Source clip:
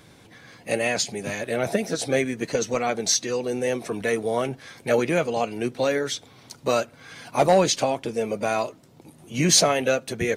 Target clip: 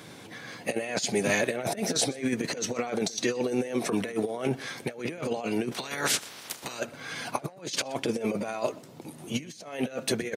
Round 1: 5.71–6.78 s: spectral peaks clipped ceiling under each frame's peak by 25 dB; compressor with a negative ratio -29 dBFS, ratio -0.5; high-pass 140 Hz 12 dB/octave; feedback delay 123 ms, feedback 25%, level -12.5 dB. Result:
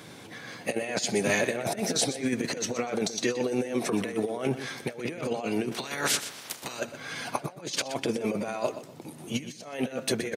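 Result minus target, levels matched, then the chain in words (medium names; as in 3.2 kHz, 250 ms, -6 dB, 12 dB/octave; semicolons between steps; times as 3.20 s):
echo-to-direct +9.5 dB
5.71–6.78 s: spectral peaks clipped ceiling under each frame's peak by 25 dB; compressor with a negative ratio -29 dBFS, ratio -0.5; high-pass 140 Hz 12 dB/octave; feedback delay 123 ms, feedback 25%, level -22 dB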